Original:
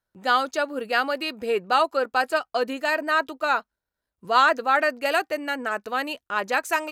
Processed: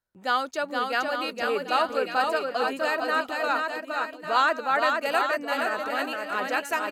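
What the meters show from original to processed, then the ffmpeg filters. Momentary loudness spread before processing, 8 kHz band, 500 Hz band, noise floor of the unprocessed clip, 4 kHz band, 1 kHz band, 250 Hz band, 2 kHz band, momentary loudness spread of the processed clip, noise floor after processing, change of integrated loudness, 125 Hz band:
9 LU, -2.5 dB, -2.0 dB, under -85 dBFS, -2.0 dB, -2.0 dB, -2.0 dB, -2.0 dB, 6 LU, -45 dBFS, -2.5 dB, n/a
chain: -af "aecho=1:1:470|846|1147|1387|1580:0.631|0.398|0.251|0.158|0.1,volume=-4dB"

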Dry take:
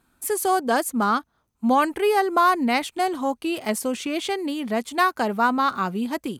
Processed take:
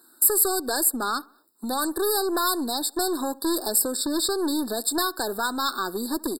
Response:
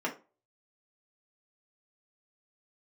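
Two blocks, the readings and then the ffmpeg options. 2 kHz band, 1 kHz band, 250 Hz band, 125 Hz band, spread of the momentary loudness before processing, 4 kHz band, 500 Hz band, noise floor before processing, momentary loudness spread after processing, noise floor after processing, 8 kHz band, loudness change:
-6.5 dB, -7.5 dB, -3.0 dB, n/a, 8 LU, +4.0 dB, -3.5 dB, -71 dBFS, 8 LU, -57 dBFS, +9.5 dB, -1.0 dB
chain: -filter_complex "[0:a]acrossover=split=2400[a][b];[a]acompressor=threshold=-28dB:ratio=6[c];[b]alimiter=level_in=0.5dB:limit=-24dB:level=0:latency=1:release=422,volume=-0.5dB[d];[c][d]amix=inputs=2:normalize=0,highpass=f=330:t=q:w=3.6,aeval=exprs='(tanh(12.6*val(0)+0.25)-tanh(0.25))/12.6':c=same,crystalizer=i=7.5:c=0,asplit=2[e][f];[f]adelay=70,lowpass=f=1.9k:p=1,volume=-22dB,asplit=2[g][h];[h]adelay=70,lowpass=f=1.9k:p=1,volume=0.5,asplit=2[i][j];[j]adelay=70,lowpass=f=1.9k:p=1,volume=0.5[k];[g][i][k]amix=inputs=3:normalize=0[l];[e][l]amix=inputs=2:normalize=0,afftfilt=real='re*eq(mod(floor(b*sr/1024/1800),2),0)':imag='im*eq(mod(floor(b*sr/1024/1800),2),0)':win_size=1024:overlap=0.75"

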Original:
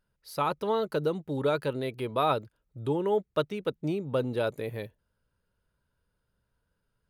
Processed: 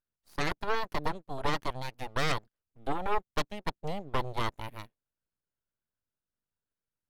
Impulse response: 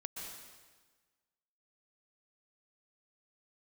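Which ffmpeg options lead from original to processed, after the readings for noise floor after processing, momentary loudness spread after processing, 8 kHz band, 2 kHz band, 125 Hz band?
under -85 dBFS, 11 LU, n/a, +4.0 dB, -4.0 dB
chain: -filter_complex "[0:a]aeval=exprs='0.211*(cos(1*acos(clip(val(0)/0.211,-1,1)))-cos(1*PI/2))+0.0531*(cos(3*acos(clip(val(0)/0.211,-1,1)))-cos(3*PI/2))+0.0668*(cos(6*acos(clip(val(0)/0.211,-1,1)))-cos(6*PI/2))+0.015*(cos(7*acos(clip(val(0)/0.211,-1,1)))-cos(7*PI/2))':c=same,aeval=exprs='abs(val(0))':c=same[a];[1:a]atrim=start_sample=2205,atrim=end_sample=4410,asetrate=36603,aresample=44100[b];[a][b]afir=irnorm=-1:irlink=0"

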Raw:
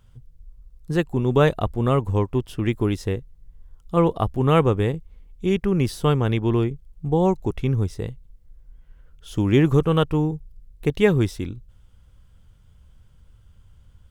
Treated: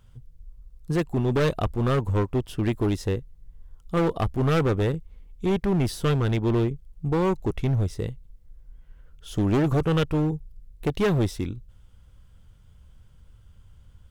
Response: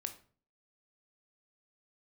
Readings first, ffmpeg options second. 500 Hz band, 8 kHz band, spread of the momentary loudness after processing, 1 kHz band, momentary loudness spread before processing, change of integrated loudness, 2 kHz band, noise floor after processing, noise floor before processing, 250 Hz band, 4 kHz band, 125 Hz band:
-4.0 dB, 0.0 dB, 9 LU, -4.0 dB, 12 LU, -3.5 dB, -3.0 dB, -53 dBFS, -53 dBFS, -3.0 dB, -2.5 dB, -2.5 dB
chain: -af "volume=18.5dB,asoftclip=hard,volume=-18.5dB"

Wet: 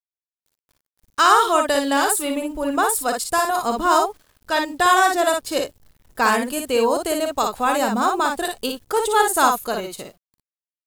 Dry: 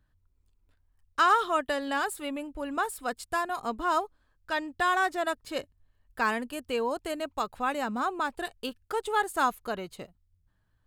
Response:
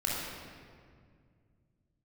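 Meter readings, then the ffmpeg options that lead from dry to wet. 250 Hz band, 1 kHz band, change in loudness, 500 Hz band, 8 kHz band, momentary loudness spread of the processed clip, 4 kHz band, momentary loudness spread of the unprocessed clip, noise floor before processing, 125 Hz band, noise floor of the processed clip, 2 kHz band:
+10.5 dB, +10.0 dB, +10.0 dB, +11.5 dB, +18.5 dB, 10 LU, +12.0 dB, 12 LU, -71 dBFS, n/a, under -85 dBFS, +8.0 dB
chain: -filter_complex "[0:a]bass=f=250:g=-4,treble=f=4k:g=10,acrossover=split=1200[a][b];[a]dynaudnorm=f=140:g=17:m=7dB[c];[c][b]amix=inputs=2:normalize=0,acrusher=bits=9:mix=0:aa=0.000001,aecho=1:1:43|57:0.224|0.596,adynamicequalizer=threshold=0.0251:dfrequency=2400:dqfactor=0.7:tfrequency=2400:tqfactor=0.7:attack=5:release=100:ratio=0.375:range=2:mode=boostabove:tftype=highshelf,volume=3.5dB"

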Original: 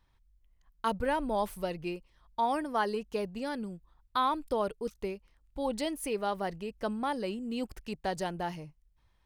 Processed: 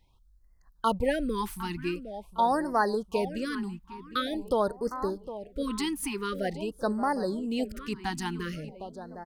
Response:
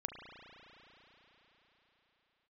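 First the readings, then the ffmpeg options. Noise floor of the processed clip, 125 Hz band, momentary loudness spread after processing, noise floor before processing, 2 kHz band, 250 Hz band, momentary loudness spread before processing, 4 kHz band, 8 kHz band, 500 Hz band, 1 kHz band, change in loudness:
-61 dBFS, +5.0 dB, 10 LU, -69 dBFS, +4.0 dB, +5.0 dB, 9 LU, +4.0 dB, +4.5 dB, +3.0 dB, +2.0 dB, +3.0 dB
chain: -filter_complex "[0:a]asplit=2[a][b];[b]adelay=758,lowpass=f=2.6k:p=1,volume=-12.5dB,asplit=2[c][d];[d]adelay=758,lowpass=f=2.6k:p=1,volume=0.46,asplit=2[e][f];[f]adelay=758,lowpass=f=2.6k:p=1,volume=0.46,asplit=2[g][h];[h]adelay=758,lowpass=f=2.6k:p=1,volume=0.46,asplit=2[i][j];[j]adelay=758,lowpass=f=2.6k:p=1,volume=0.46[k];[c][e][g][i][k]amix=inputs=5:normalize=0[l];[a][l]amix=inputs=2:normalize=0,afftfilt=real='re*(1-between(b*sr/1024,520*pow(3000/520,0.5+0.5*sin(2*PI*0.46*pts/sr))/1.41,520*pow(3000/520,0.5+0.5*sin(2*PI*0.46*pts/sr))*1.41))':imag='im*(1-between(b*sr/1024,520*pow(3000/520,0.5+0.5*sin(2*PI*0.46*pts/sr))/1.41,520*pow(3000/520,0.5+0.5*sin(2*PI*0.46*pts/sr))*1.41))':win_size=1024:overlap=0.75,volume=4.5dB"

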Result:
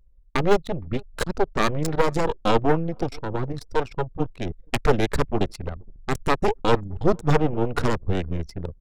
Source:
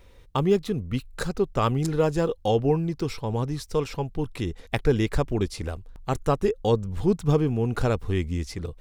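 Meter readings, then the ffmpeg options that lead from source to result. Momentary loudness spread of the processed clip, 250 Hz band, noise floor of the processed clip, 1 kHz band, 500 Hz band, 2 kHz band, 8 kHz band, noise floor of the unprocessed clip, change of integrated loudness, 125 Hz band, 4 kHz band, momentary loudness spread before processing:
9 LU, 0.0 dB, -52 dBFS, +5.0 dB, +1.0 dB, +6.5 dB, +2.0 dB, -50 dBFS, +1.0 dB, -1.5 dB, +3.0 dB, 8 LU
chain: -af "aeval=exprs='0.422*(cos(1*acos(clip(val(0)/0.422,-1,1)))-cos(1*PI/2))+0.133*(cos(6*acos(clip(val(0)/0.422,-1,1)))-cos(6*PI/2))':c=same,aecho=1:1:465|930|1395:0.0668|0.0267|0.0107,anlmdn=6.31"

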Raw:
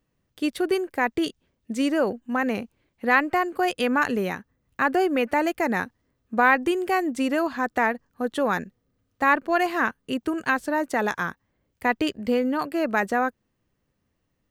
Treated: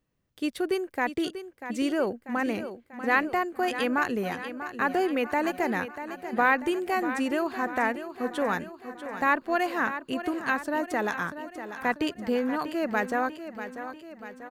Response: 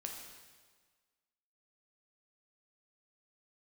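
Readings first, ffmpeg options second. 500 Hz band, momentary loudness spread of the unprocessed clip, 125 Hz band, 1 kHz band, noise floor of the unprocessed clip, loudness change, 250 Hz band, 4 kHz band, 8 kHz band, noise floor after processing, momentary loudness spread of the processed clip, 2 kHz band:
-3.5 dB, 9 LU, -3.5 dB, -3.5 dB, -75 dBFS, -4.0 dB, -3.5 dB, -3.5 dB, -3.5 dB, -58 dBFS, 12 LU, -3.5 dB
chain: -af "aecho=1:1:641|1282|1923|2564|3205|3846:0.282|0.158|0.0884|0.0495|0.0277|0.0155,volume=-4dB"

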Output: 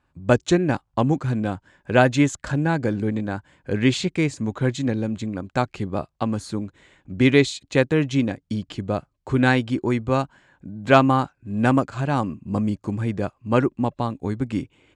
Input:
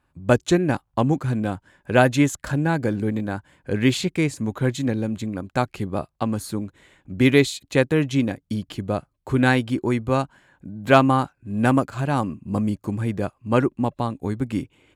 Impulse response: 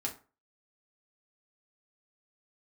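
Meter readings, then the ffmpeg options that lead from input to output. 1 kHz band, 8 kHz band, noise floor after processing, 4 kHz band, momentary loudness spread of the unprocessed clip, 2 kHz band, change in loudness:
0.0 dB, -1.5 dB, -71 dBFS, 0.0 dB, 11 LU, 0.0 dB, 0.0 dB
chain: -af "lowpass=f=8.1k:w=0.5412,lowpass=f=8.1k:w=1.3066"

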